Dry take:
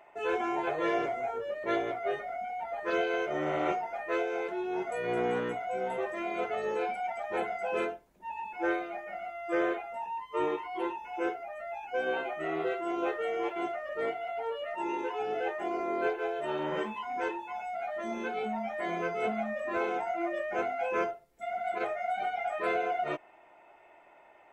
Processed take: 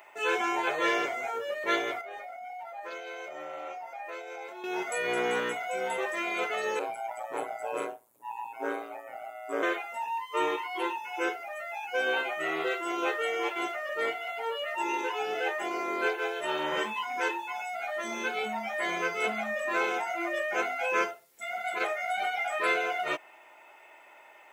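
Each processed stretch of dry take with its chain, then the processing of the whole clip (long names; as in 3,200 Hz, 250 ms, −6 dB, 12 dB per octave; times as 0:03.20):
0:02.01–0:04.64: parametric band 710 Hz +10.5 dB 0.66 octaves + tuned comb filter 270 Hz, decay 0.16 s, mix 80% + downward compressor 5 to 1, threshold −38 dBFS
0:06.79–0:09.63: flat-topped bell 3,100 Hz −10.5 dB 2.3 octaves + ring modulation 58 Hz
whole clip: high-pass filter 110 Hz 6 dB per octave; spectral tilt +3.5 dB per octave; notch filter 700 Hz, Q 12; level +4.5 dB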